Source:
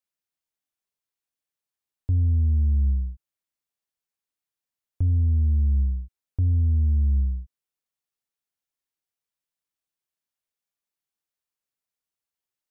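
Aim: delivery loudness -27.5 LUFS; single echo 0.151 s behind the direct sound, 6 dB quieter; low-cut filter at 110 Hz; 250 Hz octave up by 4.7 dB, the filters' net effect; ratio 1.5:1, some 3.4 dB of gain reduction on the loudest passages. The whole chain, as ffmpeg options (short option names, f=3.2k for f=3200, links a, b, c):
-af "highpass=110,equalizer=f=250:t=o:g=5.5,acompressor=threshold=-33dB:ratio=1.5,aecho=1:1:151:0.501,volume=4.5dB"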